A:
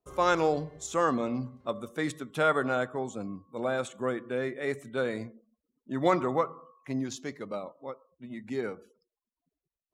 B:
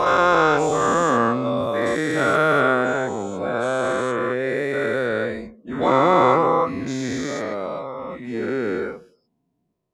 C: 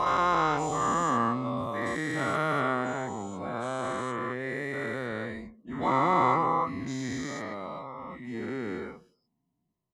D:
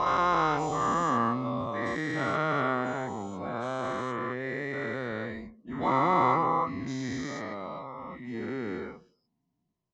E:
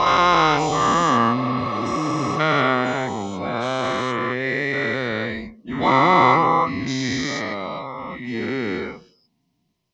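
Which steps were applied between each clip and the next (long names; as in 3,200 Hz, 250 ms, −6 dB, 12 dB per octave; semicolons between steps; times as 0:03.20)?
every bin's largest magnitude spread in time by 480 ms; high-shelf EQ 4,800 Hz −9.5 dB; level +2.5 dB
comb filter 1 ms, depth 51%; level −8.5 dB
Chebyshev low-pass filter 6,000 Hz, order 3
healed spectral selection 0:01.40–0:02.38, 440–5,000 Hz before; flat-topped bell 3,500 Hz +8 dB; level +9 dB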